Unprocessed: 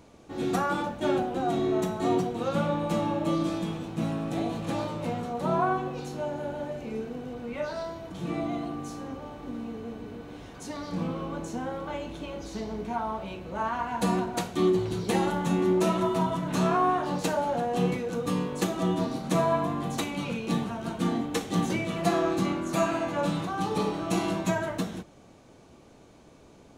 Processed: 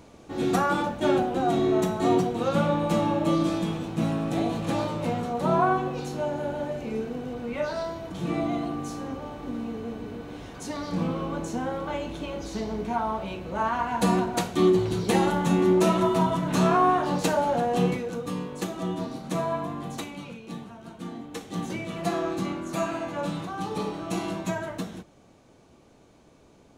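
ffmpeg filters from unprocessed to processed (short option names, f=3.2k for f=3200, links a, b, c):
-af "volume=11dB,afade=t=out:st=17.72:d=0.56:silence=0.446684,afade=t=out:st=19.92:d=0.47:silence=0.473151,afade=t=in:st=21.15:d=0.84:silence=0.421697"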